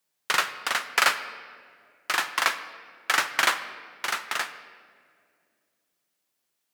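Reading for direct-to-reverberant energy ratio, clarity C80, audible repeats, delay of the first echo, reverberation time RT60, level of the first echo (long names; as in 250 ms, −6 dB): 10.5 dB, 13.0 dB, no echo audible, no echo audible, 2.2 s, no echo audible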